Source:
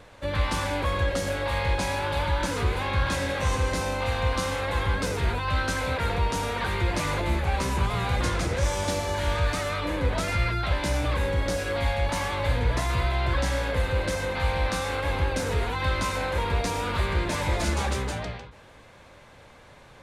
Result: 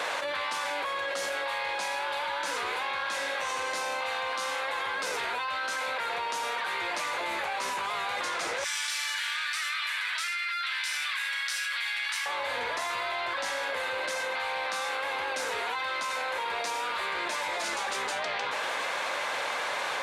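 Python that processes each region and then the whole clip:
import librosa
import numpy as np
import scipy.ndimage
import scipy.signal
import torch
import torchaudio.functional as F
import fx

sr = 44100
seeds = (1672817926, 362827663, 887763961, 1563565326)

y = fx.chain(x, sr, fx.highpass(hz=1500.0, slope=24),
    fx.notch(hz=6600.0, q=14.0), at=(8.64, 12.26))
y = scipy.signal.sosfilt(scipy.signal.butter(2, 750.0, 'highpass', fs=sr, output='sos'), y)
y = fx.high_shelf(y, sr, hz=8200.0, db=-6.0)
y = fx.env_flatten(y, sr, amount_pct=100)
y = y * 10.0 ** (-3.5 / 20.0)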